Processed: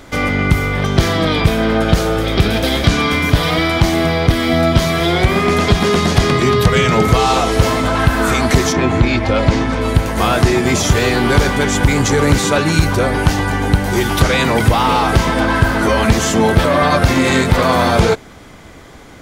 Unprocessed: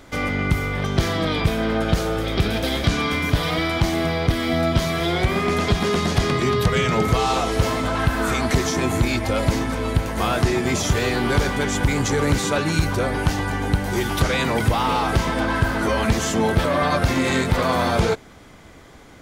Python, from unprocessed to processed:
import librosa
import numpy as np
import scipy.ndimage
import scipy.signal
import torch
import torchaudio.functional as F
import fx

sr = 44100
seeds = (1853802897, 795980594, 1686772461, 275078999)

y = fx.lowpass(x, sr, hz=fx.line((8.72, 3300.0), (9.8, 5700.0)), slope=12, at=(8.72, 9.8), fade=0.02)
y = F.gain(torch.from_numpy(y), 7.0).numpy()